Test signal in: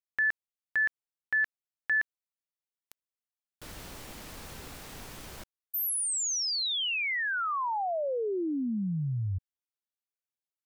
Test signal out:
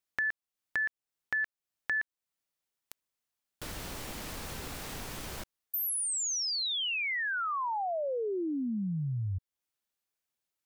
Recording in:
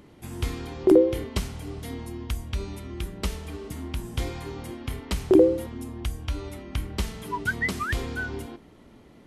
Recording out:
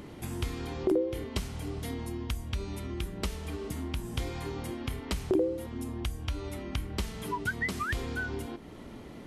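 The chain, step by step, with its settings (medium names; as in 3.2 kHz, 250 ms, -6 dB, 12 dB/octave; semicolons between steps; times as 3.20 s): compression 2:1, threshold -45 dBFS; trim +6.5 dB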